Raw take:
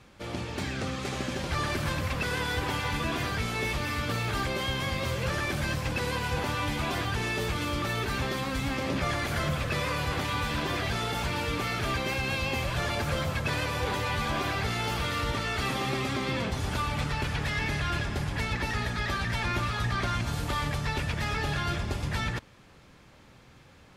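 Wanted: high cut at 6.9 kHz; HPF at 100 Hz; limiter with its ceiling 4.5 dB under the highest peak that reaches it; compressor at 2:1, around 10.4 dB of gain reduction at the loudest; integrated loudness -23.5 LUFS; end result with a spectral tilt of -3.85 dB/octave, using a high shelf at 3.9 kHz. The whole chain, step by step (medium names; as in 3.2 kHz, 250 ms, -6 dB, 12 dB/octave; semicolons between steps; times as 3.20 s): high-pass 100 Hz; low-pass 6.9 kHz; treble shelf 3.9 kHz -6 dB; compression 2:1, threshold -47 dBFS; trim +19 dB; peak limiter -14.5 dBFS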